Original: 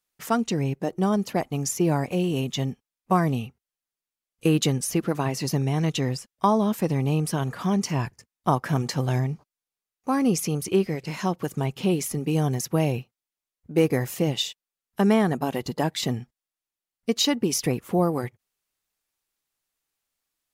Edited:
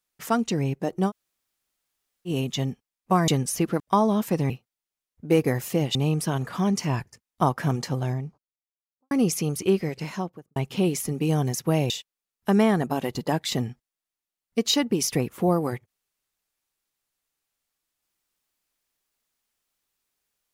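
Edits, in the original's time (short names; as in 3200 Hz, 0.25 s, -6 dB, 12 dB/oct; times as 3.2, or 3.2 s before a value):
1.09–2.28 room tone, crossfade 0.06 s
3.28–4.63 cut
5.15–6.31 cut
8.54–10.17 studio fade out
11.02–11.62 studio fade out
12.96–14.41 move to 7.01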